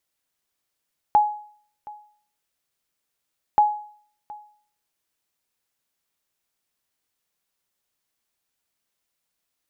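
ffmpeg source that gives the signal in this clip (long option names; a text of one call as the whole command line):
ffmpeg -f lavfi -i "aevalsrc='0.335*(sin(2*PI*839*mod(t,2.43))*exp(-6.91*mod(t,2.43)/0.53)+0.0794*sin(2*PI*839*max(mod(t,2.43)-0.72,0))*exp(-6.91*max(mod(t,2.43)-0.72,0)/0.53))':duration=4.86:sample_rate=44100" out.wav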